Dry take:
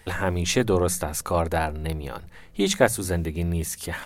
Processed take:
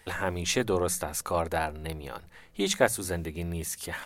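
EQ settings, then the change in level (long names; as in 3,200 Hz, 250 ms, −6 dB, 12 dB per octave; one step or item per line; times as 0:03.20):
low-shelf EQ 290 Hz −6.5 dB
−3.0 dB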